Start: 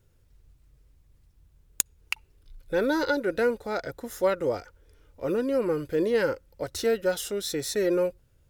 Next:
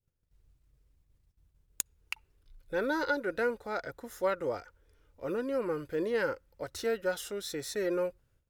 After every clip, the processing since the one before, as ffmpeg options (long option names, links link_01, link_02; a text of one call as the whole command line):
ffmpeg -i in.wav -af "adynamicequalizer=threshold=0.0112:dfrequency=1300:dqfactor=0.75:tfrequency=1300:tqfactor=0.75:attack=5:release=100:ratio=0.375:range=3:mode=boostabove:tftype=bell,agate=range=-13dB:threshold=-59dB:ratio=16:detection=peak,volume=-8dB" out.wav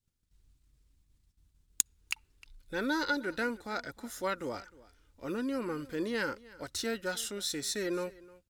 ffmpeg -i in.wav -af "equalizer=frequency=125:width_type=o:width=1:gain=-3,equalizer=frequency=250:width_type=o:width=1:gain=6,equalizer=frequency=500:width_type=o:width=1:gain=-8,equalizer=frequency=4000:width_type=o:width=1:gain=5,equalizer=frequency=8000:width_type=o:width=1:gain=6,aecho=1:1:308:0.0891" out.wav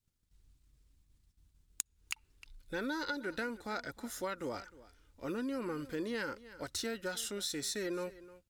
ffmpeg -i in.wav -af "acompressor=threshold=-34dB:ratio=6" out.wav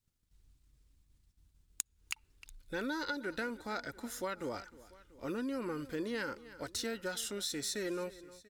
ffmpeg -i in.wav -af "aecho=1:1:689:0.0794" out.wav